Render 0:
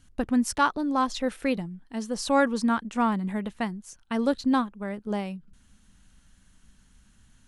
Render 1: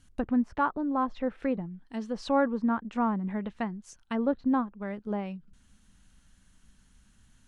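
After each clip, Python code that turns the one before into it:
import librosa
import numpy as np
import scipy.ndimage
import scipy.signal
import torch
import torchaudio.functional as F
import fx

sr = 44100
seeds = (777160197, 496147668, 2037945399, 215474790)

y = fx.env_lowpass_down(x, sr, base_hz=1300.0, full_db=-23.5)
y = y * librosa.db_to_amplitude(-2.5)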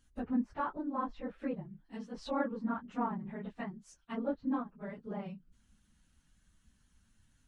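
y = fx.phase_scramble(x, sr, seeds[0], window_ms=50)
y = y * librosa.db_to_amplitude(-8.0)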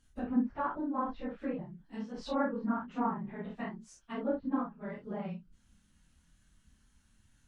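y = fx.room_early_taps(x, sr, ms=(29, 52), db=(-3.5, -5.5))
y = fx.env_lowpass_down(y, sr, base_hz=2200.0, full_db=-29.0)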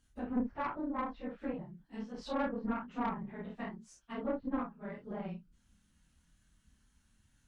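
y = fx.tube_stage(x, sr, drive_db=27.0, bias=0.65)
y = y * librosa.db_to_amplitude(1.0)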